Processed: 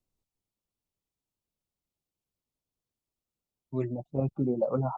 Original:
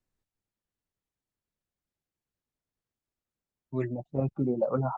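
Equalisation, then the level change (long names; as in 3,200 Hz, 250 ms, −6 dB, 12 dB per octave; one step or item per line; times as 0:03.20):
parametric band 1,700 Hz −12.5 dB 0.56 octaves
0.0 dB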